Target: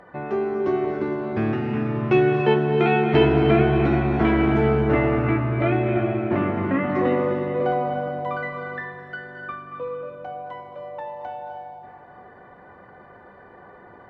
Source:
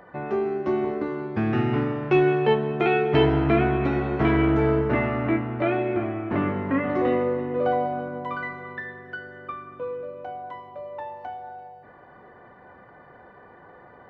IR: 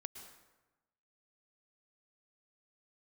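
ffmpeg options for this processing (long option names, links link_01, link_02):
-filter_complex "[0:a]asettb=1/sr,asplit=3[link_01][link_02][link_03];[link_01]atrim=end=1.524[link_04];[link_02]atrim=start=1.52:end=2.03,asetpts=PTS-STARTPTS,afade=type=in:duration=0.004:curve=qsin,afade=type=out:start_time=0.506:duration=0.004:curve=qsin,acompressor=threshold=-25dB:ratio=6[link_05];[link_03]atrim=start=2.026[link_06];[link_04][link_05]acrossfade=duration=0.004:curve1=hsin:curve2=qsin[link_07];[link_07][link_06]acrossfade=duration=0.004:curve1=qsin:curve2=hsin[link_08];[1:a]atrim=start_sample=2205,asetrate=22050,aresample=44100[link_09];[link_08][link_09]afir=irnorm=-1:irlink=0,volume=2dB"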